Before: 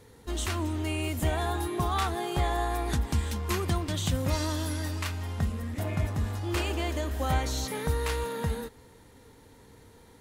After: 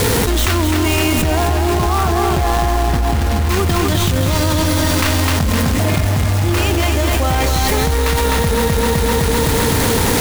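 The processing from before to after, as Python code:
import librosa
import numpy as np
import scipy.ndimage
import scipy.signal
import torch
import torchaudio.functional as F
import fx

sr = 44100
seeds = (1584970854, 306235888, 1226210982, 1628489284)

y = fx.tracing_dist(x, sr, depth_ms=0.12)
y = fx.bessel_lowpass(y, sr, hz=1500.0, order=2, at=(1.22, 3.49))
y = fx.quant_companded(y, sr, bits=4)
y = fx.echo_feedback(y, sr, ms=256, feedback_pct=56, wet_db=-6.0)
y = fx.env_flatten(y, sr, amount_pct=100)
y = y * librosa.db_to_amplitude(6.0)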